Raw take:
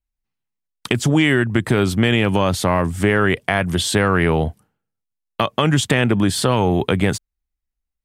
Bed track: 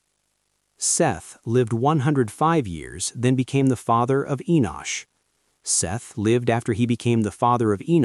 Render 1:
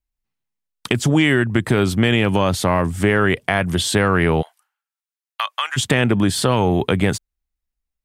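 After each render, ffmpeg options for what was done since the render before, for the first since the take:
-filter_complex "[0:a]asplit=3[a][b][c];[a]afade=t=out:st=4.41:d=0.02[d];[b]highpass=f=1k:w=0.5412,highpass=f=1k:w=1.3066,afade=t=in:st=4.41:d=0.02,afade=t=out:st=5.76:d=0.02[e];[c]afade=t=in:st=5.76:d=0.02[f];[d][e][f]amix=inputs=3:normalize=0"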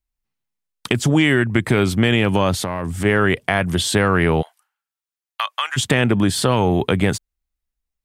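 -filter_complex "[0:a]asettb=1/sr,asplit=3[a][b][c];[a]atrim=end=1.364[d];[b]atrim=start=1.36:end=1.94,asetpts=PTS-STARTPTS,afade=t=in:d=0.004:c=qsin,afade=t=out:st=0.576:d=0.004:c=qsin,equalizer=f=2.2k:w=6.2:g=6[e];[c]atrim=start=1.936[f];[d][e]acrossfade=d=0.004:c1=hsin:c2=qsin[g];[g][f]acrossfade=d=0.004:c1=qsin:c2=hsin,asplit=3[h][i][j];[h]afade=t=out:st=2.61:d=0.02[k];[i]acompressor=threshold=-19dB:ratio=6:attack=3.2:release=140:knee=1:detection=peak,afade=t=in:st=2.61:d=0.02,afade=t=out:st=3.04:d=0.02[l];[j]afade=t=in:st=3.04:d=0.02[m];[k][l][m]amix=inputs=3:normalize=0"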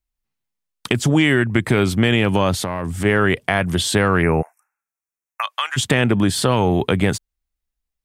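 -filter_complex "[0:a]asplit=3[a][b][c];[a]afade=t=out:st=4.21:d=0.02[d];[b]asuperstop=centerf=3800:order=20:qfactor=1.4,afade=t=in:st=4.21:d=0.02,afade=t=out:st=5.42:d=0.02[e];[c]afade=t=in:st=5.42:d=0.02[f];[d][e][f]amix=inputs=3:normalize=0"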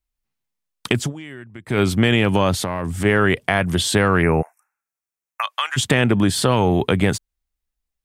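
-filter_complex "[0:a]asplit=3[a][b][c];[a]atrim=end=1.13,asetpts=PTS-STARTPTS,afade=t=out:st=0.99:d=0.14:silence=0.0944061[d];[b]atrim=start=1.13:end=1.66,asetpts=PTS-STARTPTS,volume=-20.5dB[e];[c]atrim=start=1.66,asetpts=PTS-STARTPTS,afade=t=in:d=0.14:silence=0.0944061[f];[d][e][f]concat=n=3:v=0:a=1"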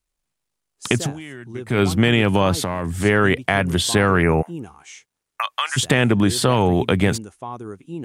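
-filter_complex "[1:a]volume=-13.5dB[a];[0:a][a]amix=inputs=2:normalize=0"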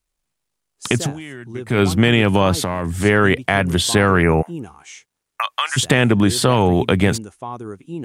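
-af "volume=2dB,alimiter=limit=-1dB:level=0:latency=1"

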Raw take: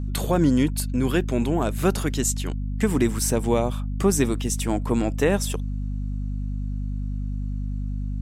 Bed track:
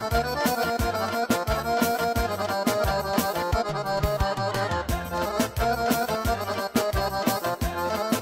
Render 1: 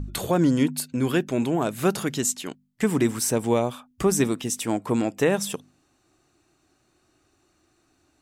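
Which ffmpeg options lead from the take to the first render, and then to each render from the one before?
-af "bandreject=f=50:t=h:w=4,bandreject=f=100:t=h:w=4,bandreject=f=150:t=h:w=4,bandreject=f=200:t=h:w=4,bandreject=f=250:t=h:w=4"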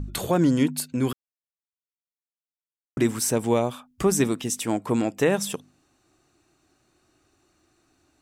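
-filter_complex "[0:a]asplit=3[a][b][c];[a]atrim=end=1.13,asetpts=PTS-STARTPTS,afade=t=out:st=1.126:d=0.004:c=hsin[d];[b]atrim=start=1.13:end=2.97,asetpts=PTS-STARTPTS,volume=0[e];[c]atrim=start=2.97,asetpts=PTS-STARTPTS,afade=t=in:d=0.004:c=hsin[f];[d][e][f]concat=n=3:v=0:a=1"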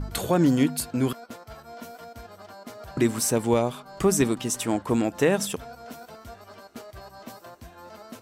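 -filter_complex "[1:a]volume=-18dB[a];[0:a][a]amix=inputs=2:normalize=0"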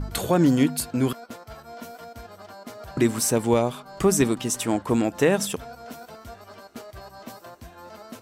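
-af "volume=1.5dB"

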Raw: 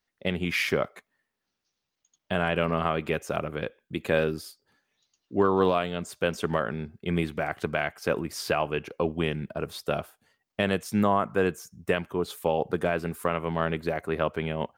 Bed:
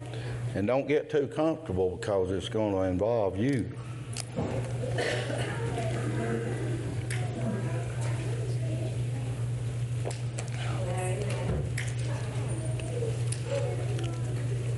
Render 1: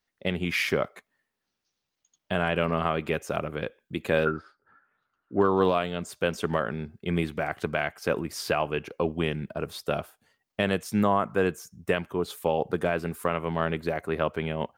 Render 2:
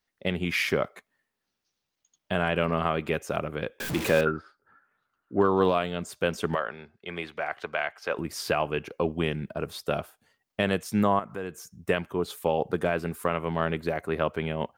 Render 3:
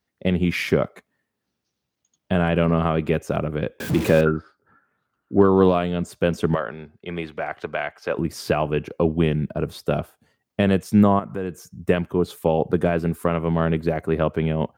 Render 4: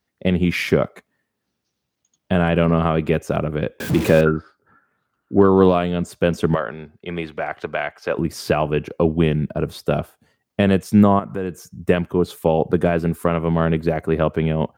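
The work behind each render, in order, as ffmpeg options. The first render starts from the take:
-filter_complex "[0:a]asplit=3[a][b][c];[a]afade=t=out:st=4.25:d=0.02[d];[b]lowpass=f=1.4k:t=q:w=10,afade=t=in:st=4.25:d=0.02,afade=t=out:st=5.39:d=0.02[e];[c]afade=t=in:st=5.39:d=0.02[f];[d][e][f]amix=inputs=3:normalize=0"
-filter_complex "[0:a]asettb=1/sr,asplit=3[a][b][c];[a]atrim=end=3.804[d];[b]atrim=start=3.8:end=4.21,asetpts=PTS-STARTPTS,afade=t=in:d=0.004:c=qsin,afade=t=out:st=0.406:d=0.004:c=qsin,aeval=exprs='val(0)+0.5*0.0473*sgn(val(0))':c=same[e];[c]atrim=start=4.206[f];[d][e]acrossfade=d=0.004:c1=hsin:c2=qsin[g];[g][f]acrossfade=d=0.004:c1=qsin:c2=hsin,asettb=1/sr,asplit=3[h][i][j];[h]atrim=end=6.554[k];[i]atrim=start=6.55:end=8.19,asetpts=PTS-STARTPTS,afade=t=in:d=0.004:c=qsin,afade=t=out:st=1.636:d=0.004:c=qsin,acrossover=split=470 5600:gain=0.158 1 0.2[l][m][n];[l][m][n]amix=inputs=3:normalize=0[o];[j]atrim=start=8.186[p];[k][o]acrossfade=d=0.004:c1=hsin:c2=qsin[q];[q][p]acrossfade=d=0.004:c1=qsin:c2=hsin,asettb=1/sr,asplit=3[r][s][t];[r]atrim=end=11.194[u];[s]atrim=start=11.19:end=11.75,asetpts=PTS-STARTPTS,afade=t=in:d=0.004:c=qsin,afade=t=out:st=0.556:d=0.004:c=qsin,acompressor=threshold=-38dB:ratio=2:attack=3.2:release=140:knee=1:detection=peak[v];[t]atrim=start=11.746[w];[u][v]acrossfade=d=0.004:c1=hsin:c2=qsin[x];[x][w]acrossfade=d=0.004:c1=qsin:c2=hsin"
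-af "highpass=62,lowshelf=f=490:g=11.5"
-af "volume=2.5dB,alimiter=limit=-2dB:level=0:latency=1"

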